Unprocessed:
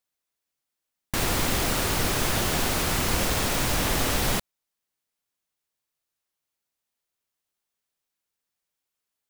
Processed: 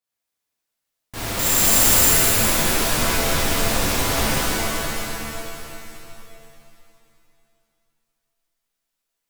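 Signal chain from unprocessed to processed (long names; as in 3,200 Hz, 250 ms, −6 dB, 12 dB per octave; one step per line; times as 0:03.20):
brickwall limiter −16 dBFS, peak gain reduction 5 dB
0:01.39–0:02.08: bad sample-rate conversion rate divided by 6×, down none, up zero stuff
reverb with rising layers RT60 2.6 s, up +7 semitones, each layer −2 dB, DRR −9.5 dB
level −7.5 dB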